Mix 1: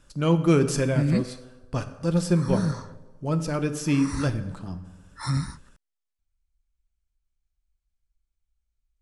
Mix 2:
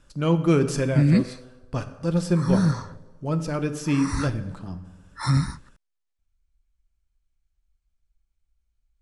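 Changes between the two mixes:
background +5.0 dB; master: add treble shelf 7 kHz -5.5 dB

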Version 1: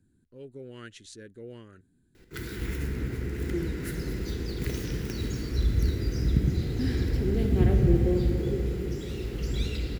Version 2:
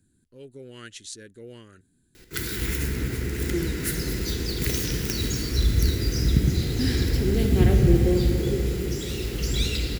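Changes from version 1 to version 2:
background +3.5 dB; master: add treble shelf 2.9 kHz +12 dB

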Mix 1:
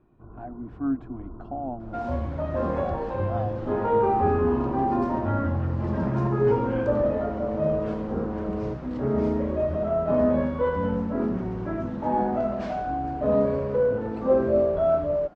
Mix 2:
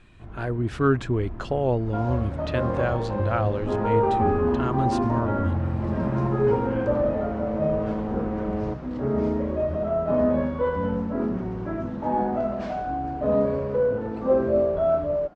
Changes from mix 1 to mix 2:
speech: remove two resonant band-passes 440 Hz, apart 1.4 oct; first sound: remove rippled Chebyshev low-pass 1.5 kHz, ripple 6 dB

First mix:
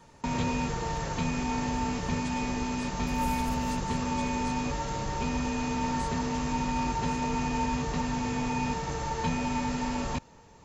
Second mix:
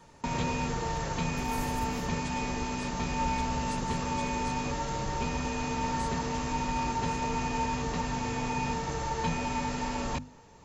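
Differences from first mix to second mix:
first sound: add hum notches 50/100/150/200/250 Hz; second sound: entry -1.70 s

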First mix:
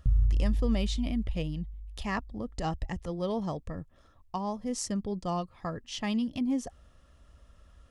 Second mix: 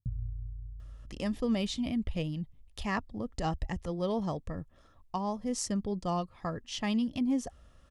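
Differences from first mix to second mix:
speech: entry +0.80 s; background: add band-pass filter 160 Hz, Q 1.8

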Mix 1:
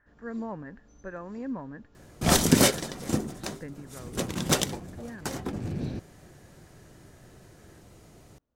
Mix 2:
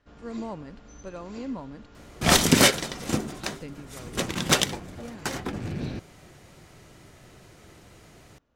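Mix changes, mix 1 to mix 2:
speech: remove resonant low-pass 1.7 kHz, resonance Q 9; first sound +8.5 dB; master: add peaking EQ 2.3 kHz +7.5 dB 2.5 oct

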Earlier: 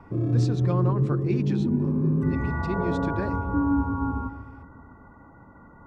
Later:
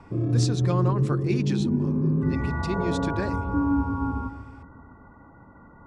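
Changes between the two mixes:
speech: remove tape spacing loss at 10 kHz 26 dB; master: add distance through air 69 m

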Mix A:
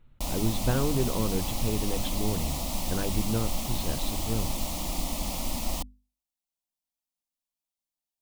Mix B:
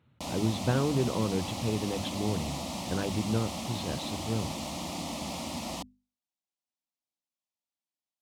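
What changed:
background: add distance through air 56 m; master: add high-pass 87 Hz 24 dB/octave

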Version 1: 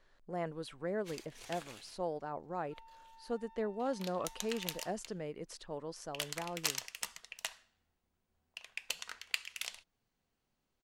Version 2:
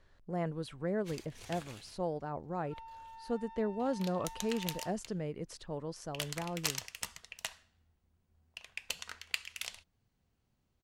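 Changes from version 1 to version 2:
second sound +8.0 dB; master: add peaking EQ 79 Hz +13 dB 2.5 oct

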